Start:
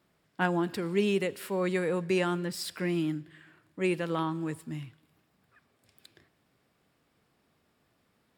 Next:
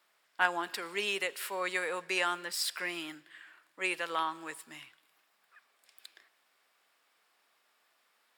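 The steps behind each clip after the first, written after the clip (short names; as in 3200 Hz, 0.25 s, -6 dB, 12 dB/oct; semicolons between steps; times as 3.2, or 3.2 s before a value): HPF 910 Hz 12 dB/oct; gain +4 dB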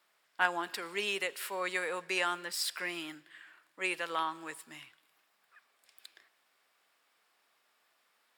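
low shelf 110 Hz +5 dB; gain -1 dB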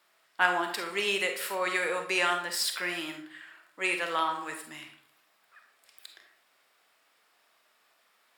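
digital reverb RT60 0.56 s, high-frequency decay 0.55×, pre-delay 5 ms, DRR 4 dB; gain +4 dB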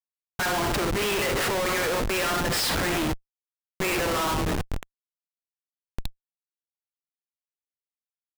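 Schmitt trigger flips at -34 dBFS; gain +8.5 dB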